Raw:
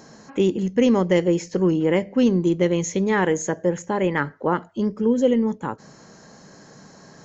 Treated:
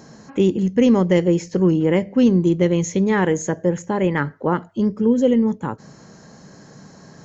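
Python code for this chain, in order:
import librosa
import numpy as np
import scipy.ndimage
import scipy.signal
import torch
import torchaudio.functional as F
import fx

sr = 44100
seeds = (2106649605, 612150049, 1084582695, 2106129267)

y = fx.peak_eq(x, sr, hz=99.0, db=6.5, octaves=2.7)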